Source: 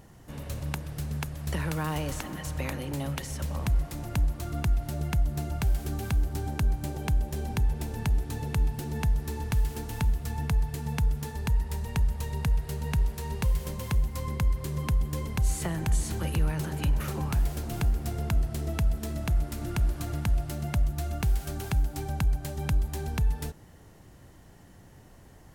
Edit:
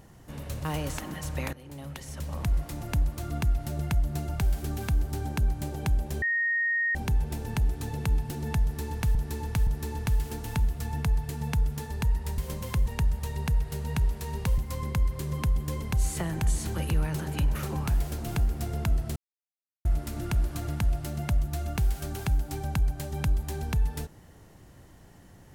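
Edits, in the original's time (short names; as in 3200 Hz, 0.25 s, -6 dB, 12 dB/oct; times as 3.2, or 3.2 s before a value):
0.65–1.87 cut
2.75–3.85 fade in, from -16 dB
7.44 add tone 1860 Hz -23.5 dBFS 0.73 s
9.12–9.64 loop, 3 plays
13.55–14.03 move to 11.83
18.61–19.3 mute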